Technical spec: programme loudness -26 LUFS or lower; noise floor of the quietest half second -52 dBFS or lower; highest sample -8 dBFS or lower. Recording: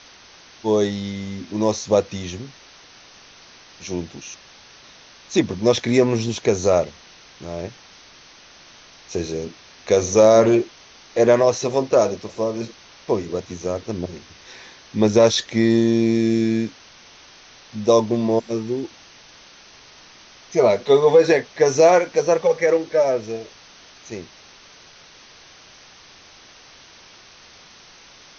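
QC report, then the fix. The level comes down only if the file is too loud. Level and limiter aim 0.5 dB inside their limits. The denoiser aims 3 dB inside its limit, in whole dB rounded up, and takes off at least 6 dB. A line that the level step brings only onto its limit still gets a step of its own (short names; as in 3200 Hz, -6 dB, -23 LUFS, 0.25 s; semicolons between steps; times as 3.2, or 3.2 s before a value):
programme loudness -19.5 LUFS: fail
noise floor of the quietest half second -47 dBFS: fail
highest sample -3.0 dBFS: fail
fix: gain -7 dB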